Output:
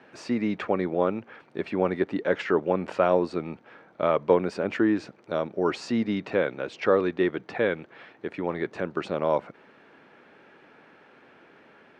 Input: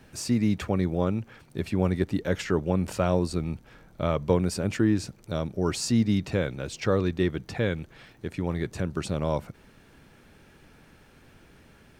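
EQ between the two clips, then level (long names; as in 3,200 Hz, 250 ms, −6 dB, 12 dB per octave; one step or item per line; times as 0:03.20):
band-pass filter 350–2,300 Hz
+5.5 dB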